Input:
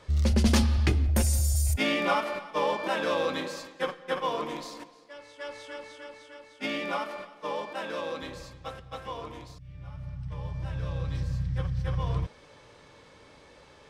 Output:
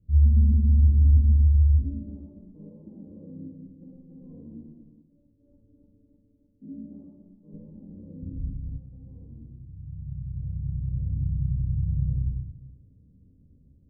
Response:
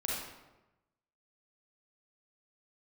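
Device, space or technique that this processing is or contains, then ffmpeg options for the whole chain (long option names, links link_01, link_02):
club heard from the street: -filter_complex "[0:a]alimiter=limit=-19.5dB:level=0:latency=1:release=176,lowpass=frequency=220:width=0.5412,lowpass=frequency=220:width=1.3066[link_01];[1:a]atrim=start_sample=2205[link_02];[link_01][link_02]afir=irnorm=-1:irlink=0,asettb=1/sr,asplit=3[link_03][link_04][link_05];[link_03]atrim=end=7.534[link_06];[link_04]atrim=start=7.53:end=8.78,asetpts=PTS-STARTPTS,afade=type=in:duration=0.004:curve=qsin,afade=type=out:start_time=1.246:duration=0.004:curve=qsin,aemphasis=mode=reproduction:type=bsi[link_07];[link_05]atrim=start=8.776[link_08];[link_06][link_07]acrossfade=duration=0.004:curve1=hsin:curve2=qsin[link_09];[link_09][link_08]acrossfade=duration=0.004:curve1=qsin:curve2=hsin"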